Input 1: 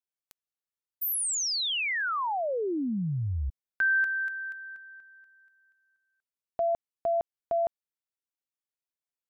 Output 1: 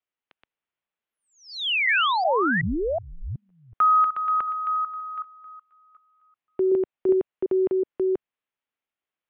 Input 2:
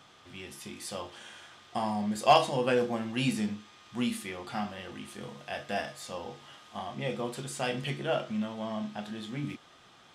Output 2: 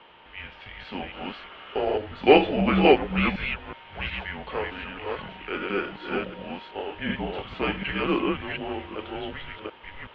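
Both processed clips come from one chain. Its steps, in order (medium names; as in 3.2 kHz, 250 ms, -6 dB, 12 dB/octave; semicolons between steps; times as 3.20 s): chunks repeated in reverse 373 ms, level -1.5 dB; mistuned SSB -300 Hz 320–3500 Hz; bass shelf 210 Hz -6.5 dB; trim +7 dB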